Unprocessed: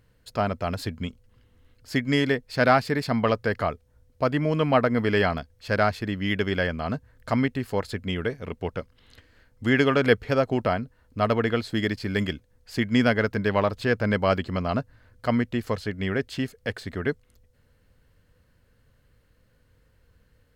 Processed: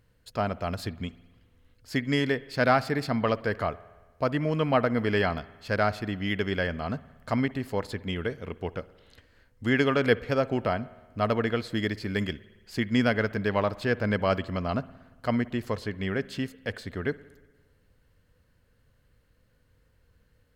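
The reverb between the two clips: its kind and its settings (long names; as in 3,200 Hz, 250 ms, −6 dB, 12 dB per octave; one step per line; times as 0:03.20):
spring reverb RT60 1.3 s, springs 57 ms, chirp 30 ms, DRR 18.5 dB
level −3 dB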